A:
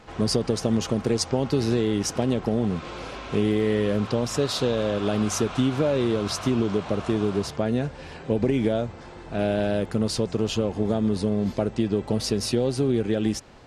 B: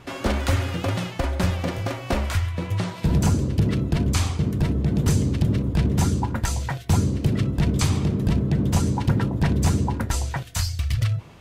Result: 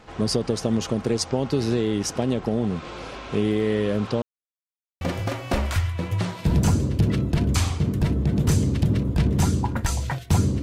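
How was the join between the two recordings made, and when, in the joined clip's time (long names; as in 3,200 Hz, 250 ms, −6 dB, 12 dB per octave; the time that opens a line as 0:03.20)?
A
0:04.22–0:05.01: silence
0:05.01: continue with B from 0:01.60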